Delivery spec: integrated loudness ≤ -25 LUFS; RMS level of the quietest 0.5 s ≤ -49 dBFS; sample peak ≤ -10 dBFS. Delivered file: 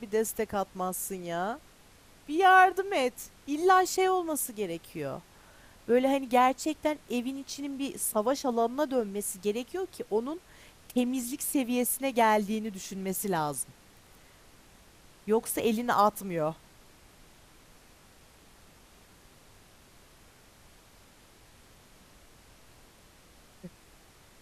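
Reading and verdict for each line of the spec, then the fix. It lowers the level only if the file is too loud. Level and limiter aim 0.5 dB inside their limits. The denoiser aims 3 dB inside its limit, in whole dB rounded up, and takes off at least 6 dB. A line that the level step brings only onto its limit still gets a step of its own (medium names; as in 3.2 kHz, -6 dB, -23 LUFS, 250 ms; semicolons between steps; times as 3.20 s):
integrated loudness -28.5 LUFS: pass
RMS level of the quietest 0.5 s -57 dBFS: pass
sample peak -8.5 dBFS: fail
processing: peak limiter -10.5 dBFS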